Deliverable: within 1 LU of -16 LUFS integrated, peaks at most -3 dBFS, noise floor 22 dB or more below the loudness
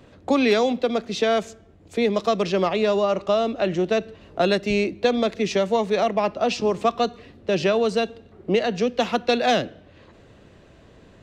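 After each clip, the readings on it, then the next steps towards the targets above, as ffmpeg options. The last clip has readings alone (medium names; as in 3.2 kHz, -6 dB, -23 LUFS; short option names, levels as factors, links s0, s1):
loudness -22.5 LUFS; peak level -7.0 dBFS; loudness target -16.0 LUFS
-> -af "volume=2.11,alimiter=limit=0.708:level=0:latency=1"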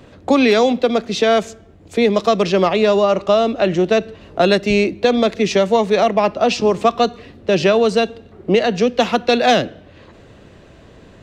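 loudness -16.0 LUFS; peak level -3.0 dBFS; noise floor -45 dBFS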